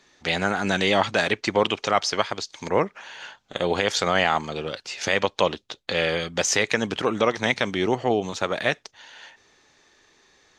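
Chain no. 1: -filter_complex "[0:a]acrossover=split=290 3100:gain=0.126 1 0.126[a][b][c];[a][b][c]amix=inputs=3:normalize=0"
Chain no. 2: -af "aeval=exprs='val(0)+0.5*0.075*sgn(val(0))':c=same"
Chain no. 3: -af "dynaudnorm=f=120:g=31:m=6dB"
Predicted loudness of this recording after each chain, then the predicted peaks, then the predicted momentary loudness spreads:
-26.0, -21.0, -22.0 LUFS; -7.0, -2.5, -1.5 dBFS; 11, 7, 10 LU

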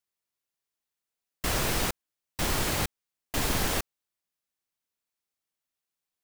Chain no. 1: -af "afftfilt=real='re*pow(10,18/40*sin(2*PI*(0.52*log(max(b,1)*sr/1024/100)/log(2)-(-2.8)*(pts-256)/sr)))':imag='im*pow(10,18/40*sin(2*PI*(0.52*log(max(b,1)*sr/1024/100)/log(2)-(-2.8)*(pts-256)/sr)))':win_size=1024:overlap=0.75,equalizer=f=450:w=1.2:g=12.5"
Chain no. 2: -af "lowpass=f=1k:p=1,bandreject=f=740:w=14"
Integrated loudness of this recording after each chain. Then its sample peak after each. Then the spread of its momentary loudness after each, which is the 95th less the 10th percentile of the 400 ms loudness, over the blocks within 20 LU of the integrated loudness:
-22.5, -34.5 LUFS; -7.5, -17.5 dBFS; 12, 12 LU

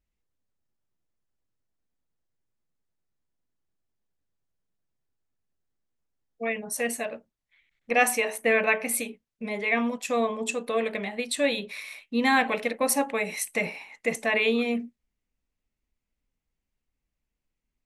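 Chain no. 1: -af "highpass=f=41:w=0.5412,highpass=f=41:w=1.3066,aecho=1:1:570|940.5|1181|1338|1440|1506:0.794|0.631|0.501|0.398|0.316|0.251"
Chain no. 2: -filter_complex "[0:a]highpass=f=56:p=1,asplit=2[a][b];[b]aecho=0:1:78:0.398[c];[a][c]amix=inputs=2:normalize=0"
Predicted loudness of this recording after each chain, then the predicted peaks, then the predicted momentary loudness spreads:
-23.5, -26.0 LUFS; -6.5, -8.5 dBFS; 9, 12 LU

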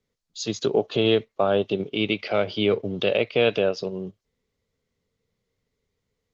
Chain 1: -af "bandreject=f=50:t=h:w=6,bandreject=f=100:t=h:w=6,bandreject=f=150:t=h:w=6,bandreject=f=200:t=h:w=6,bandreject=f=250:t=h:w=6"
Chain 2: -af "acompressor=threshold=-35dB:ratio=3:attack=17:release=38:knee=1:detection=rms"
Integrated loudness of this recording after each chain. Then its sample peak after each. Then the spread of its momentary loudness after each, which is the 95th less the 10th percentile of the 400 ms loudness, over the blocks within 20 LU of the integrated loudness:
-24.0, -34.0 LUFS; -8.0, -18.0 dBFS; 11, 4 LU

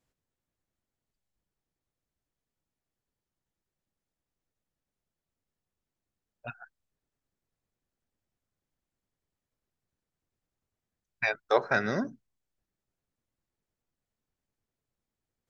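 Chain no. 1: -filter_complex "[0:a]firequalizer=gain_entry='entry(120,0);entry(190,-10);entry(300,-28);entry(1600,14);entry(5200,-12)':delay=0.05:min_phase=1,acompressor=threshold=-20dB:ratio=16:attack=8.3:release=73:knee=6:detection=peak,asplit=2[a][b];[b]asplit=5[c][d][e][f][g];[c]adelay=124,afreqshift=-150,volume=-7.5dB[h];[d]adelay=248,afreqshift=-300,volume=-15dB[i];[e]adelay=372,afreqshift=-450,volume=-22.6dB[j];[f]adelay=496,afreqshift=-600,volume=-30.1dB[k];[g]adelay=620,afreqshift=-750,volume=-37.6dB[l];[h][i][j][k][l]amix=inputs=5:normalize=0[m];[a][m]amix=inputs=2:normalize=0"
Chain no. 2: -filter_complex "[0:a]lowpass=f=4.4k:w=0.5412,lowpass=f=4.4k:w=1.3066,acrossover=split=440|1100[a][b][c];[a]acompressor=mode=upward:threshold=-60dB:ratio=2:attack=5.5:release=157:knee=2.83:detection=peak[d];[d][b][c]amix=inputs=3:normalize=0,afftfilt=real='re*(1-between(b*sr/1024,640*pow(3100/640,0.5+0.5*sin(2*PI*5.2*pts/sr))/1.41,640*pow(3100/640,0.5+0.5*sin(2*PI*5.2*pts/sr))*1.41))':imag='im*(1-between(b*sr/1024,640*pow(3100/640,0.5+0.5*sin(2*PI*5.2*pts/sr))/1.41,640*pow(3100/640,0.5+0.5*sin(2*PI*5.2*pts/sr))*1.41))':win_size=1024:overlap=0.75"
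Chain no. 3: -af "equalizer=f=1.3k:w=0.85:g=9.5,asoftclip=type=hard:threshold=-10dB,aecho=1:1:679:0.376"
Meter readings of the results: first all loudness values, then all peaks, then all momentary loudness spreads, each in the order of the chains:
-27.0, -30.5, -25.0 LUFS; -9.0, -11.5, -10.0 dBFS; 17, 19, 19 LU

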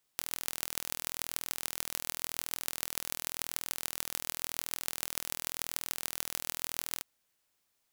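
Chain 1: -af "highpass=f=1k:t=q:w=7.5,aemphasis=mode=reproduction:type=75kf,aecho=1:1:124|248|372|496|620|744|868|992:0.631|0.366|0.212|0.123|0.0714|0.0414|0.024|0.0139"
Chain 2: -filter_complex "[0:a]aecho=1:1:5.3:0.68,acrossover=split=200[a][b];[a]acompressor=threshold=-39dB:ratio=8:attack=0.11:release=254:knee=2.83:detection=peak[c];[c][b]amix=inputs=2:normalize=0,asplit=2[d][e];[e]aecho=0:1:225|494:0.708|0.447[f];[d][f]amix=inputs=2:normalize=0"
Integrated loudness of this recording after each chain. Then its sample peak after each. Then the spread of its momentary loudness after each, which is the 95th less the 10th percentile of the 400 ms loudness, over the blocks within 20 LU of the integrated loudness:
-38.5, -32.0 LUFS; -17.0, -4.0 dBFS; 1, 2 LU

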